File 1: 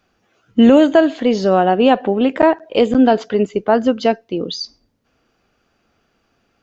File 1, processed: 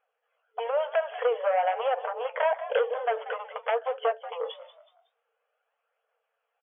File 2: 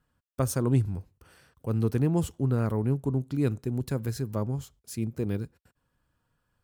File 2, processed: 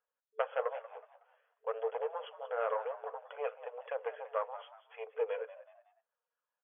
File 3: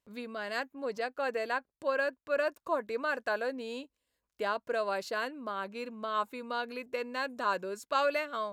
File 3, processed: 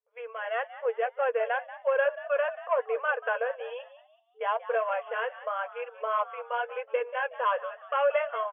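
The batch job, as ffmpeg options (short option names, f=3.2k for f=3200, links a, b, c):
-filter_complex "[0:a]aphaser=in_gain=1:out_gain=1:delay=2.7:decay=0.3:speed=0.49:type=triangular,agate=range=-17dB:threshold=-43dB:ratio=16:detection=peak,highshelf=f=2.2k:g=-9,acompressor=threshold=-23dB:ratio=12,aeval=exprs='0.188*sin(PI/2*2*val(0)/0.188)':c=same,afftfilt=real='re*between(b*sr/4096,440,3400)':imag='im*between(b*sr/4096,440,3400)':win_size=4096:overlap=0.75,flanger=delay=1.1:depth=8.1:regen=-45:speed=0.99:shape=triangular,asplit=2[a][b];[b]asplit=3[c][d][e];[c]adelay=185,afreqshift=74,volume=-15dB[f];[d]adelay=370,afreqshift=148,volume=-24.1dB[g];[e]adelay=555,afreqshift=222,volume=-33.2dB[h];[f][g][h]amix=inputs=3:normalize=0[i];[a][i]amix=inputs=2:normalize=0"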